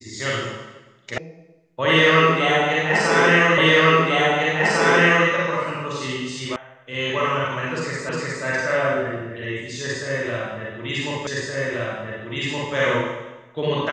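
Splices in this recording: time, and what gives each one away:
0:01.18: cut off before it has died away
0:03.58: the same again, the last 1.7 s
0:06.56: cut off before it has died away
0:08.09: the same again, the last 0.36 s
0:11.27: the same again, the last 1.47 s

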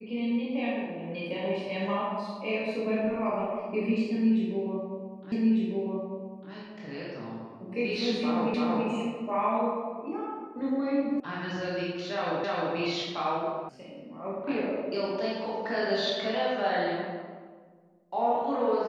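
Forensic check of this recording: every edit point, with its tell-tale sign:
0:05.32: the same again, the last 1.2 s
0:08.54: the same again, the last 0.33 s
0:11.20: cut off before it has died away
0:12.44: the same again, the last 0.31 s
0:13.69: cut off before it has died away

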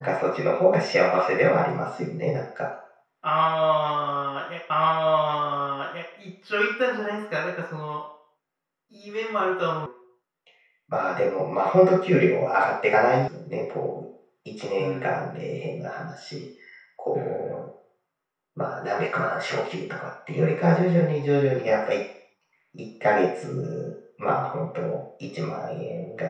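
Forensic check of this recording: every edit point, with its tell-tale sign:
0:04.70: the same again, the last 1.44 s
0:09.86: cut off before it has died away
0:13.28: cut off before it has died away

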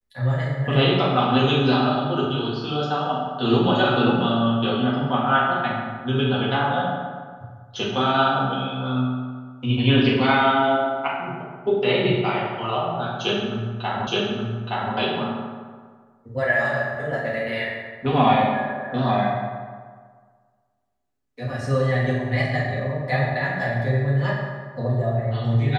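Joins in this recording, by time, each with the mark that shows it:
0:14.07: the same again, the last 0.87 s

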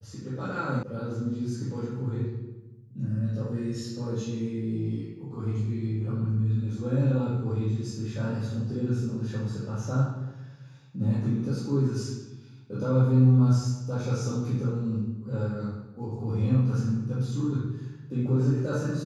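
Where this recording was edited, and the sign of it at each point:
0:00.83: cut off before it has died away

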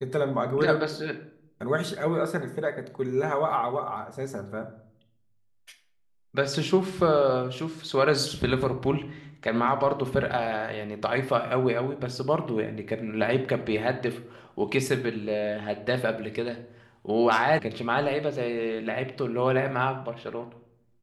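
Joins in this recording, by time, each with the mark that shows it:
0:17.59: cut off before it has died away

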